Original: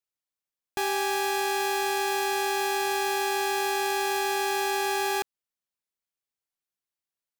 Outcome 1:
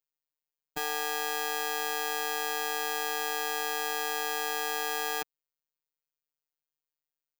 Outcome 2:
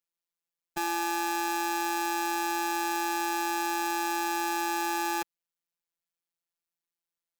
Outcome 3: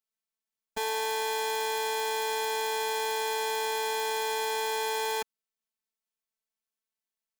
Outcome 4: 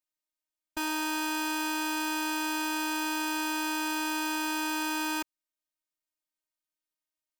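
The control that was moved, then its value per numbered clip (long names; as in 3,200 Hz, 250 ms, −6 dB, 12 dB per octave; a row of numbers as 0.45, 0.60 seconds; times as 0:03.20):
phases set to zero, frequency: 150, 170, 220, 310 Hertz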